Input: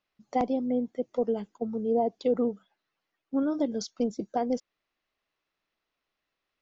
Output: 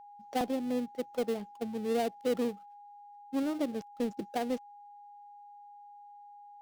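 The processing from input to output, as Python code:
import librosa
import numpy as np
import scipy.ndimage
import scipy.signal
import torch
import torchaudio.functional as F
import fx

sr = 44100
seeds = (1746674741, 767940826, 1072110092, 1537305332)

y = fx.dead_time(x, sr, dead_ms=0.19)
y = y + 10.0 ** (-45.0 / 20.0) * np.sin(2.0 * np.pi * 820.0 * np.arange(len(y)) / sr)
y = F.gain(torch.from_numpy(y), -4.5).numpy()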